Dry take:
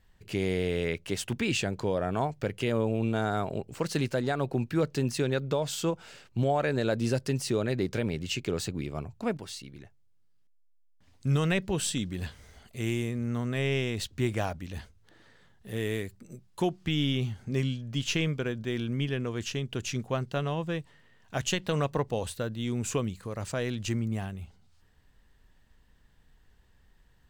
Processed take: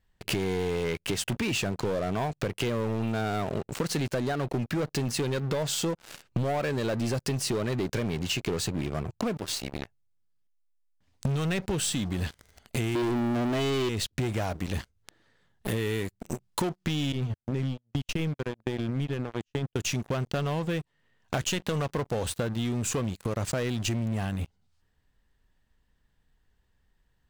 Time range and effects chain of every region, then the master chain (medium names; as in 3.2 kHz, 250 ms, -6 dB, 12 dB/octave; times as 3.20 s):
12.95–13.89 s: small resonant body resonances 330/680/3000 Hz, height 18 dB, ringing for 35 ms + level flattener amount 100%
17.12–19.76 s: tilt EQ -1.5 dB/octave + compression, threshold -27 dBFS + gate -31 dBFS, range -30 dB
whole clip: waveshaping leveller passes 5; compression 12:1, threshold -29 dBFS; trim +2 dB